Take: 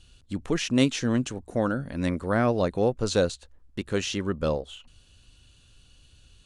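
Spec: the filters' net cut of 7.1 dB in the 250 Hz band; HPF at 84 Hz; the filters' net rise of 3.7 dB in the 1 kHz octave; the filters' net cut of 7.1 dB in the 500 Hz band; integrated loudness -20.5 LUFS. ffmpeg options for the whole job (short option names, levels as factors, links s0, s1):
-af "highpass=84,equalizer=f=250:t=o:g=-6.5,equalizer=f=500:t=o:g=-9,equalizer=f=1000:t=o:g=8.5,volume=2.99"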